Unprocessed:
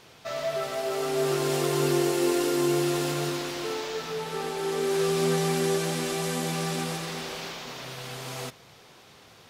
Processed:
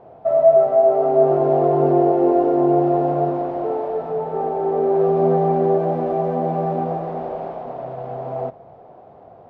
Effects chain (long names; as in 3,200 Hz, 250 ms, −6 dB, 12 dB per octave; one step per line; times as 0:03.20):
low-pass with resonance 690 Hz, resonance Q 4.9
level +5 dB